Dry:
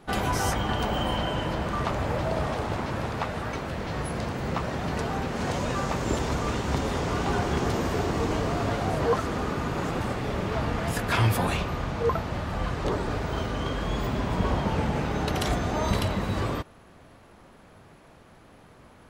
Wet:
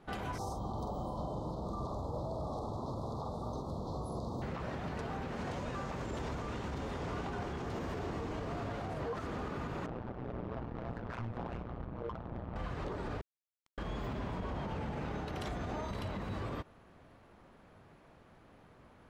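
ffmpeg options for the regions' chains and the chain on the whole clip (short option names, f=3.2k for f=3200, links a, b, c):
-filter_complex "[0:a]asettb=1/sr,asplit=3[a][b][c];[a]atrim=end=0.384[d];[b]atrim=start=0.38:end=4.42,asetpts=PTS-STARTPTS,afade=t=in:d=0.004:c=qsin,afade=t=out:st=4.036:d=0.004:c=qsin,asuperstop=centerf=2100:order=12:qfactor=0.84,asplit=2[e][f];[f]adelay=46,volume=-6dB[g];[e][g]amix=inputs=2:normalize=0,atrim=end_sample=178164[h];[c]atrim=start=4.416[i];[d][h]acrossfade=d=0.004:c1=hsin:c2=qsin[j];[j][i]acrossfade=d=0.004:c1=qsin:c2=hsin,asettb=1/sr,asplit=3[k][l][m];[k]atrim=end=9.864[n];[l]atrim=start=9.86:end=12.56,asetpts=PTS-STARTPTS,afade=t=in:d=0.004:c=qsin,afade=t=out:st=2.696:d=0.004:c=qsin,tremolo=f=120:d=0.824,adynamicsmooth=sensitivity=2:basefreq=540[o];[m]atrim=start=12.556[p];[n][o]acrossfade=d=0.004:c1=hsin:c2=qsin[q];[q][p]acrossfade=d=0.004:c1=qsin:c2=hsin,asettb=1/sr,asplit=3[r][s][t];[r]atrim=end=13.214[u];[s]atrim=start=13.21:end=13.78,asetpts=PTS-STARTPTS,afade=t=in:d=0.004:c=qsin,afade=t=out:st=0.566:d=0.004:c=qsin,highpass=1.4k,acrusher=bits=3:mix=0:aa=0.5[v];[t]atrim=start=13.776[w];[u][v]acrossfade=d=0.004:c1=hsin:c2=qsin[x];[x][w]acrossfade=d=0.004:c1=qsin:c2=hsin,highshelf=f=5.2k:g=-10,alimiter=limit=-23.5dB:level=0:latency=1:release=78,volume=-7dB"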